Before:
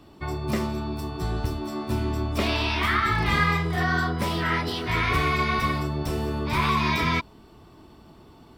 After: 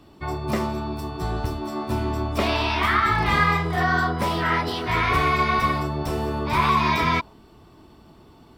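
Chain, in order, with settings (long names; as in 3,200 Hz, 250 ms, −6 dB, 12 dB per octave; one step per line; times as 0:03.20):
dynamic equaliser 830 Hz, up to +6 dB, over −39 dBFS, Q 0.81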